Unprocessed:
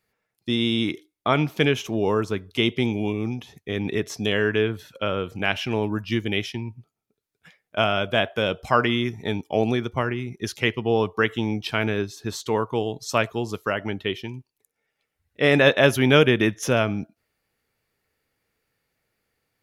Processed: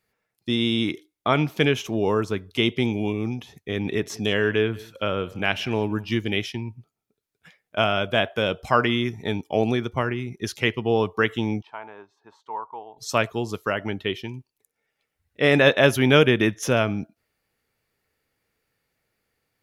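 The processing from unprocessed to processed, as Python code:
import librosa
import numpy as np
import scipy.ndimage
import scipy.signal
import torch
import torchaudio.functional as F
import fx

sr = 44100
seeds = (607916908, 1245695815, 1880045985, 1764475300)

y = fx.echo_single(x, sr, ms=181, db=-22.0, at=(3.81, 6.43), fade=0.02)
y = fx.bandpass_q(y, sr, hz=910.0, q=4.9, at=(11.61, 12.97), fade=0.02)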